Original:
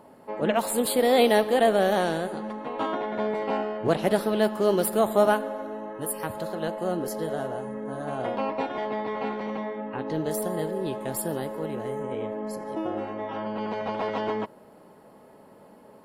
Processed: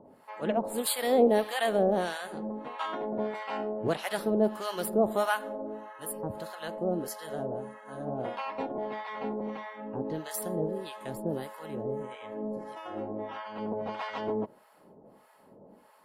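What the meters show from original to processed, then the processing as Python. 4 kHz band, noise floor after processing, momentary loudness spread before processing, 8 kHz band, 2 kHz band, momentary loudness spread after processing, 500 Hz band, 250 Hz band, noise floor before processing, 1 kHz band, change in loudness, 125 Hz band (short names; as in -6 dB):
-5.0 dB, -59 dBFS, 12 LU, -4.5 dB, -4.5 dB, 12 LU, -5.0 dB, -4.0 dB, -52 dBFS, -5.5 dB, -5.0 dB, -4.5 dB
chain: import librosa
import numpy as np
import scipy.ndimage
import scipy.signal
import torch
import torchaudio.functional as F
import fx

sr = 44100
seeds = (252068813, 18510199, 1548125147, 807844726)

y = fx.harmonic_tremolo(x, sr, hz=1.6, depth_pct=100, crossover_hz=810.0)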